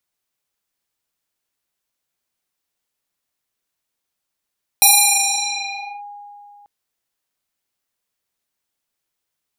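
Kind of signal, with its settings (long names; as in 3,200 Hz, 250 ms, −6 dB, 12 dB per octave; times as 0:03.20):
two-operator FM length 1.84 s, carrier 819 Hz, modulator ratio 1.97, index 8.3, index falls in 1.20 s linear, decay 2.92 s, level −6.5 dB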